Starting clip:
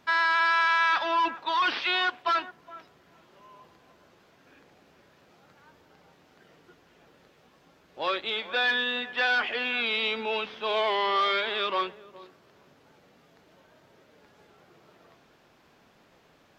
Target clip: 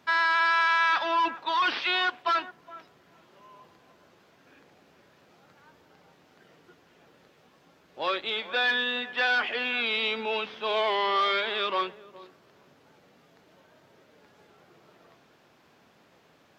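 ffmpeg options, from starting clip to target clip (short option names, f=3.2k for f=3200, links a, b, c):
-af "highpass=76"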